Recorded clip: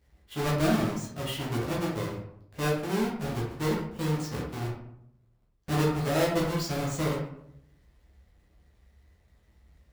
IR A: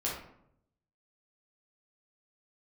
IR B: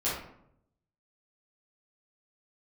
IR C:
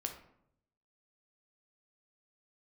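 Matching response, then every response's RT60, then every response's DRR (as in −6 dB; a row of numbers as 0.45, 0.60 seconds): A; 0.75, 0.75, 0.75 seconds; −5.5, −10.5, 3.5 decibels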